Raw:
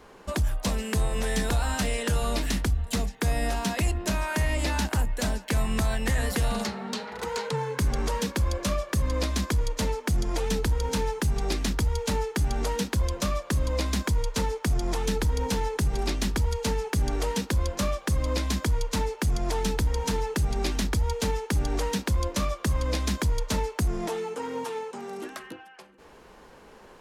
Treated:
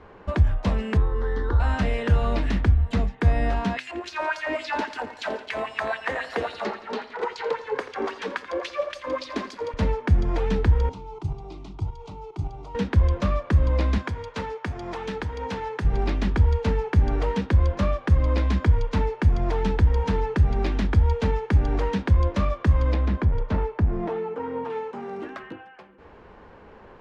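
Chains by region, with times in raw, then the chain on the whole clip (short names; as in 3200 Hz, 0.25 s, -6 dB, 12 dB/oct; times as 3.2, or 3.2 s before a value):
0.97–1.6 Gaussian blur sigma 1.9 samples + fixed phaser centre 670 Hz, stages 6
3.77–9.74 LFO high-pass sine 3.7 Hz 330–5100 Hz + lo-fi delay 85 ms, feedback 80%, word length 7-bit, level -14 dB
10.89–12.75 LPF 9500 Hz 24 dB/oct + level quantiser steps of 12 dB + fixed phaser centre 340 Hz, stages 8
13.98–15.85 HPF 79 Hz + low shelf 400 Hz -10 dB
22.94–24.7 LPF 1700 Hz 6 dB/oct + hard clip -23 dBFS
whole clip: LPF 2300 Hz 12 dB/oct; bell 86 Hz +7.5 dB 0.83 oct; de-hum 127.6 Hz, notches 29; gain +3 dB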